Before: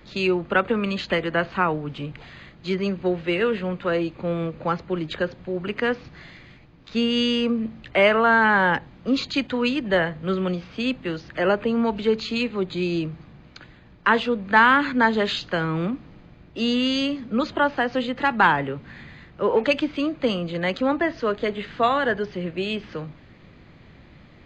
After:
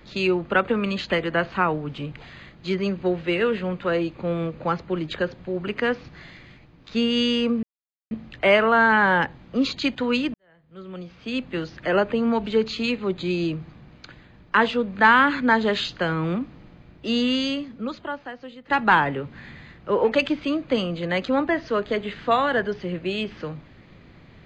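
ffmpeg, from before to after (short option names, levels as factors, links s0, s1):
-filter_complex "[0:a]asplit=4[s0][s1][s2][s3];[s0]atrim=end=7.63,asetpts=PTS-STARTPTS,afade=t=out:st=7.626:d=0.004:c=hsin,apad=pad_dur=0.48[s4];[s1]atrim=start=7.63:end=9.86,asetpts=PTS-STARTPTS,afade=t=in:d=0.004:c=hsin,afade=t=out:st=2.226:d=0.004:c=hsin[s5];[s2]atrim=start=9.86:end=18.22,asetpts=PTS-STARTPTS,afade=t=in:d=1.19:c=qua,afade=t=out:st=6.96:d=1.4:c=qua:silence=0.149624[s6];[s3]atrim=start=18.22,asetpts=PTS-STARTPTS,afade=t=in:d=0.004:c=hsin:silence=0.149624[s7];[s4][s5][s6][s7]concat=n=4:v=0:a=1"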